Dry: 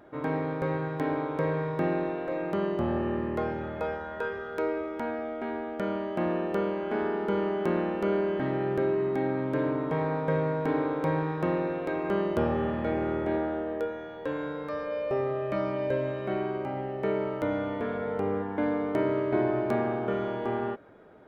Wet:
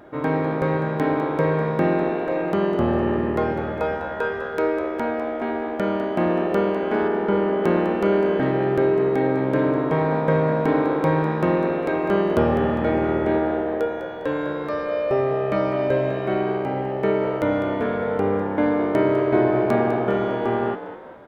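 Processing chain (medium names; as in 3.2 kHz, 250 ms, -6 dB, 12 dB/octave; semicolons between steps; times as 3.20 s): 7.08–7.64 s: distance through air 180 m; on a send: frequency-shifting echo 202 ms, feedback 44%, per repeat +64 Hz, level -12 dB; on the sum: trim +7.5 dB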